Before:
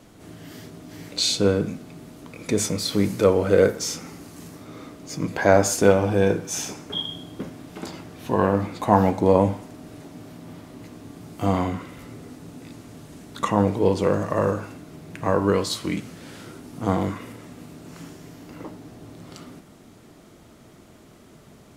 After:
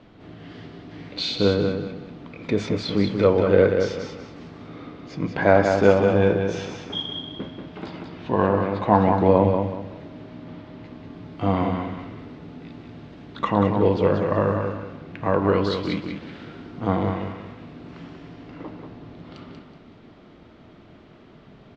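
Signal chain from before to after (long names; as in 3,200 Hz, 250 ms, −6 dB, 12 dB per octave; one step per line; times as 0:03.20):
low-pass filter 3,900 Hz 24 dB per octave
repeating echo 187 ms, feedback 30%, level −5.5 dB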